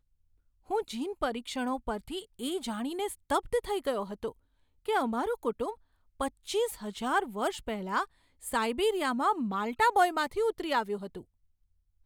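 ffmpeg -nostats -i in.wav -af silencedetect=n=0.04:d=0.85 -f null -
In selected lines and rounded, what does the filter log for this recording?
silence_start: 10.95
silence_end: 12.06 | silence_duration: 1.11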